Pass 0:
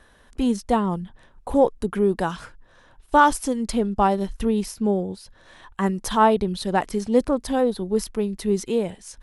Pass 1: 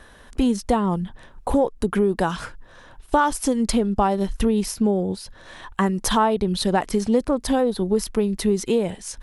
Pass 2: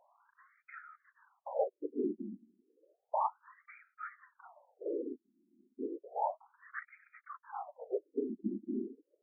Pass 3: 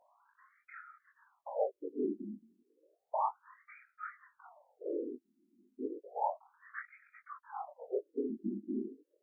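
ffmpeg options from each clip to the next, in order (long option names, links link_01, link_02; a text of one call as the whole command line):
ffmpeg -i in.wav -af "acompressor=threshold=-24dB:ratio=4,volume=7dB" out.wav
ffmpeg -i in.wav -af "afftfilt=real='hypot(re,im)*cos(2*PI*random(0))':imag='hypot(re,im)*sin(2*PI*random(1))':win_size=512:overlap=0.75,afftfilt=real='re*between(b*sr/1024,260*pow(1800/260,0.5+0.5*sin(2*PI*0.32*pts/sr))/1.41,260*pow(1800/260,0.5+0.5*sin(2*PI*0.32*pts/sr))*1.41)':imag='im*between(b*sr/1024,260*pow(1800/260,0.5+0.5*sin(2*PI*0.32*pts/sr))/1.41,260*pow(1800/260,0.5+0.5*sin(2*PI*0.32*pts/sr))*1.41)':win_size=1024:overlap=0.75,volume=-6dB" out.wav
ffmpeg -i in.wav -af "flanger=delay=19:depth=5:speed=0.68,volume=2.5dB" out.wav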